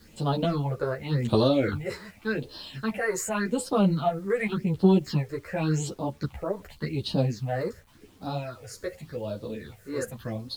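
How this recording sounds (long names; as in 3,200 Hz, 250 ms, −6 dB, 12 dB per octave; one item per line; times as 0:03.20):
phaser sweep stages 6, 0.88 Hz, lowest notch 200–2,100 Hz
a quantiser's noise floor 10 bits, dither none
a shimmering, thickened sound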